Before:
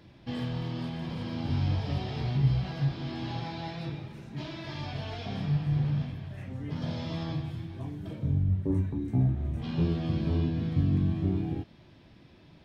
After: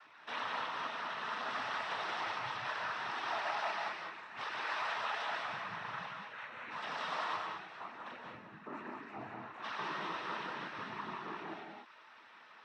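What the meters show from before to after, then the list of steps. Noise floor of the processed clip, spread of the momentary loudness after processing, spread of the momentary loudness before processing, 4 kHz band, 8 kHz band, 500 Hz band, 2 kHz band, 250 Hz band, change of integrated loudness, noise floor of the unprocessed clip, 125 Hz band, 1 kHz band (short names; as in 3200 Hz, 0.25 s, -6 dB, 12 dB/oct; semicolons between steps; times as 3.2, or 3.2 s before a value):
-58 dBFS, 11 LU, 11 LU, -0.5 dB, n/a, -6.0 dB, +8.0 dB, -21.0 dB, -8.5 dB, -55 dBFS, -32.5 dB, +7.0 dB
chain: ladder band-pass 1400 Hz, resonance 55%; noise vocoder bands 12; reverb removal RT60 0.54 s; non-linear reverb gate 0.23 s rising, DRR 1 dB; gain +18 dB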